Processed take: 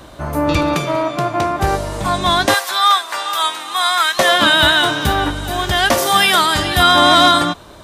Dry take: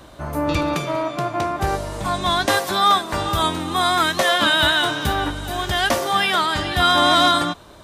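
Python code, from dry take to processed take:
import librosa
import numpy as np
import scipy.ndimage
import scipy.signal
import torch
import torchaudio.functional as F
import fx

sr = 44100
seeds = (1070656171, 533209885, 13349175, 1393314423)

y = fx.highpass(x, sr, hz=1000.0, slope=12, at=(2.54, 4.19))
y = fx.high_shelf(y, sr, hz=fx.line((5.97, 4900.0), (6.82, 8700.0)), db=11.5, at=(5.97, 6.82), fade=0.02)
y = F.gain(torch.from_numpy(y), 5.0).numpy()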